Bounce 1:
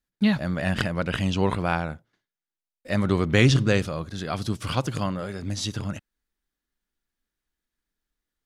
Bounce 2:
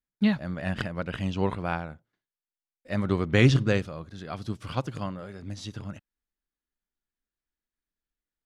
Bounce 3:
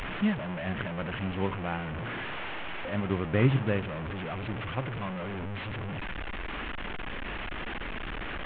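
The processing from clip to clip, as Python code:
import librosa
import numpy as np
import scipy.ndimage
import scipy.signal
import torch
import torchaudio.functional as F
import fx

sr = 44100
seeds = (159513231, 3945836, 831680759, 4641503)

y1 = fx.high_shelf(x, sr, hz=4900.0, db=-8.0)
y1 = fx.upward_expand(y1, sr, threshold_db=-30.0, expansion=1.5)
y2 = fx.delta_mod(y1, sr, bps=16000, step_db=-25.0)
y2 = y2 * 10.0 ** (-4.0 / 20.0)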